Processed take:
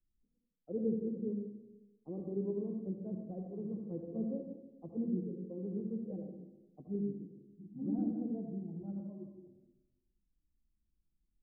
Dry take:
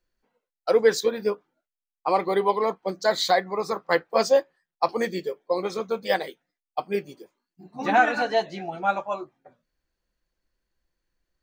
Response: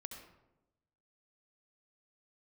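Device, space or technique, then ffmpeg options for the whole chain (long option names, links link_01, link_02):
next room: -filter_complex "[0:a]lowpass=frequency=270:width=0.5412,lowpass=frequency=270:width=1.3066[link_01];[1:a]atrim=start_sample=2205[link_02];[link_01][link_02]afir=irnorm=-1:irlink=0,volume=3dB"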